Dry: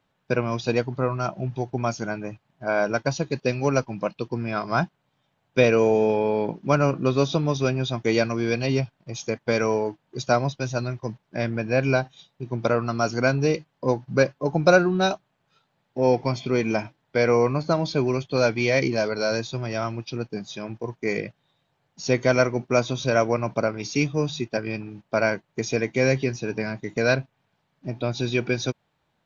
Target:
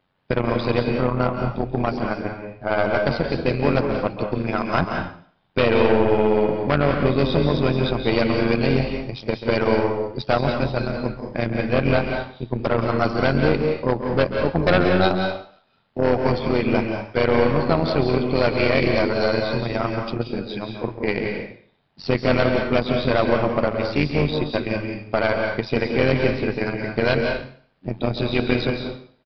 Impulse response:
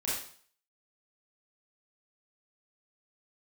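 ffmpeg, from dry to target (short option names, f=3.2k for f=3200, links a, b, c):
-filter_complex "[0:a]aeval=exprs='0.316*(abs(mod(val(0)/0.316+3,4)-2)-1)':c=same,tremolo=f=91:d=0.788,aeval=exprs='(tanh(8.91*val(0)+0.6)-tanh(0.6))/8.91':c=same,asplit=2[a][b];[1:a]atrim=start_sample=2205,adelay=136[c];[b][c]afir=irnorm=-1:irlink=0,volume=-8.5dB[d];[a][d]amix=inputs=2:normalize=0,aresample=11025,aresample=44100,volume=8.5dB"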